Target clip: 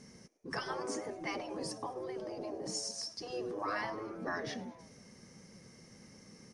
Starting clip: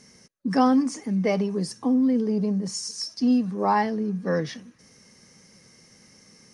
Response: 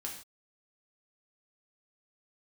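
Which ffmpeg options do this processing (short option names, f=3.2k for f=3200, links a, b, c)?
-filter_complex "[0:a]tiltshelf=f=1.2k:g=4,asplit=5[a][b][c][d][e];[b]adelay=106,afreqshift=120,volume=-22.5dB[f];[c]adelay=212,afreqshift=240,volume=-27.2dB[g];[d]adelay=318,afreqshift=360,volume=-32dB[h];[e]adelay=424,afreqshift=480,volume=-36.7dB[i];[a][f][g][h][i]amix=inputs=5:normalize=0,afftfilt=real='re*lt(hypot(re,im),0.224)':imag='im*lt(hypot(re,im),0.224)':win_size=1024:overlap=0.75,volume=-3dB"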